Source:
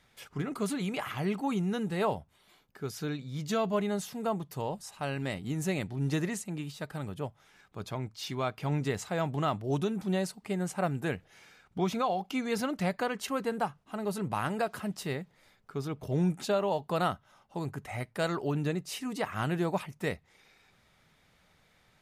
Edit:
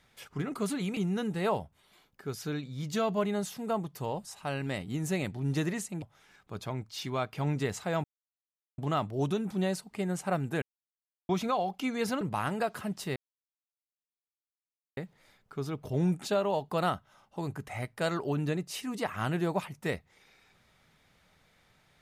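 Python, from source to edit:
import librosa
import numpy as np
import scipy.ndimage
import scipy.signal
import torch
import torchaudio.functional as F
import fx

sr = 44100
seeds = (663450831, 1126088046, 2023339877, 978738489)

y = fx.edit(x, sr, fx.cut(start_s=0.97, length_s=0.56),
    fx.cut(start_s=6.58, length_s=0.69),
    fx.insert_silence(at_s=9.29, length_s=0.74),
    fx.silence(start_s=11.13, length_s=0.67),
    fx.cut(start_s=12.72, length_s=1.48),
    fx.insert_silence(at_s=15.15, length_s=1.81), tone=tone)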